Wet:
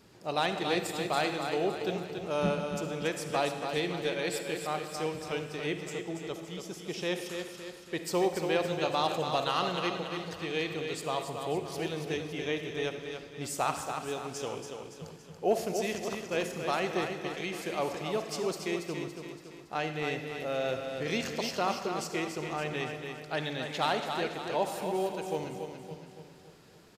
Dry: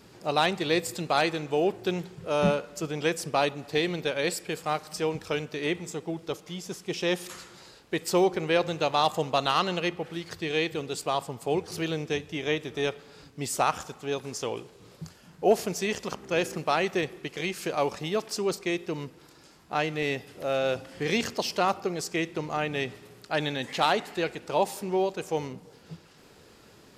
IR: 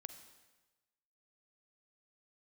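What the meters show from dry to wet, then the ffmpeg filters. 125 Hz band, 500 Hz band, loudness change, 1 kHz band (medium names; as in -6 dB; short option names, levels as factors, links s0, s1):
-4.0 dB, -4.0 dB, -4.0 dB, -4.0 dB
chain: -filter_complex "[0:a]aecho=1:1:282|564|846|1128|1410|1692:0.473|0.232|0.114|0.0557|0.0273|0.0134[s0];[1:a]atrim=start_sample=2205[s1];[s0][s1]afir=irnorm=-1:irlink=0"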